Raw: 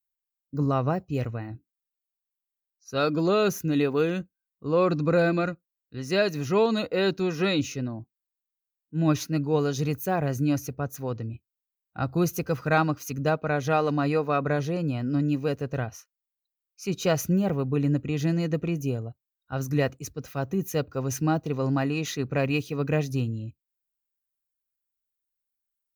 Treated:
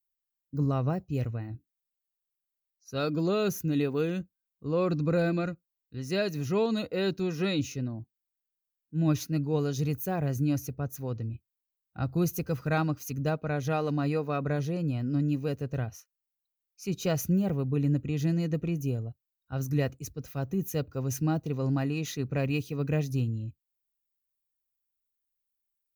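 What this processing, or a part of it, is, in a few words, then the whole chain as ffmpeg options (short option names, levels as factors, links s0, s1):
smiley-face EQ: -af "lowshelf=f=180:g=7.5,equalizer=f=1100:t=o:w=1.6:g=-3,highshelf=f=9700:g=7,volume=0.531"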